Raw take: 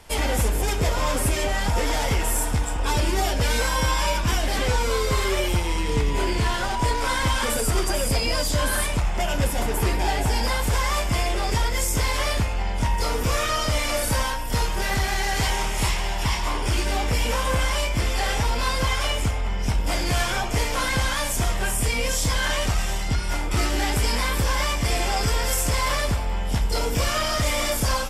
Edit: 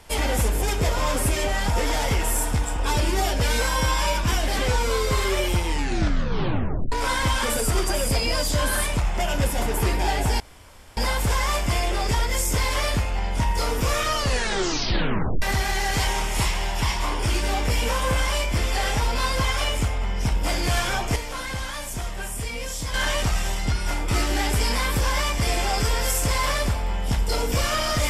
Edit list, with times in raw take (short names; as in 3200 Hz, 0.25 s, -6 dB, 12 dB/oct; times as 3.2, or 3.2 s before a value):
5.66 tape stop 1.26 s
10.4 insert room tone 0.57 s
13.58 tape stop 1.27 s
20.59–22.37 gain -7 dB